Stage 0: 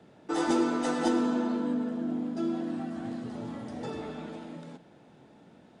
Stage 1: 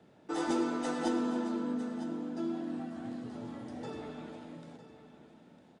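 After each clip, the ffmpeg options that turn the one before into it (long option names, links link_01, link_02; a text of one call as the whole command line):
ffmpeg -i in.wav -af "aecho=1:1:955:0.211,volume=-5dB" out.wav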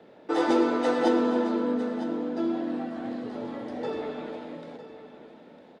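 ffmpeg -i in.wav -af "equalizer=frequency=125:width_type=o:width=1:gain=-3,equalizer=frequency=250:width_type=o:width=1:gain=4,equalizer=frequency=500:width_type=o:width=1:gain=12,equalizer=frequency=1000:width_type=o:width=1:gain=5,equalizer=frequency=2000:width_type=o:width=1:gain=7,equalizer=frequency=4000:width_type=o:width=1:gain=7,equalizer=frequency=8000:width_type=o:width=1:gain=-5" out.wav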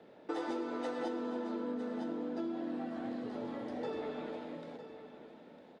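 ffmpeg -i in.wav -af "acompressor=threshold=-29dB:ratio=10,volume=-5dB" out.wav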